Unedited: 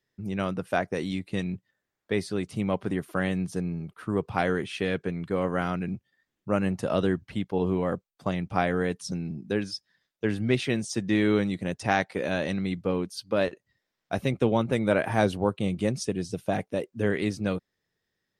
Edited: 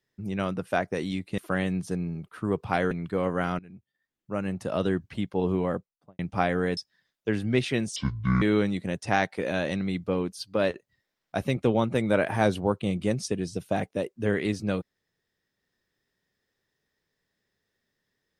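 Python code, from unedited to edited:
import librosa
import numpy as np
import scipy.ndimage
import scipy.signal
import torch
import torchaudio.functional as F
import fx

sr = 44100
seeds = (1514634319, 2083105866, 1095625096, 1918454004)

y = fx.studio_fade_out(x, sr, start_s=7.82, length_s=0.55)
y = fx.edit(y, sr, fx.cut(start_s=1.38, length_s=1.65),
    fx.cut(start_s=4.56, length_s=0.53),
    fx.fade_in_from(start_s=5.77, length_s=1.52, floor_db=-20.0),
    fx.cut(start_s=8.95, length_s=0.78),
    fx.speed_span(start_s=10.92, length_s=0.27, speed=0.59), tone=tone)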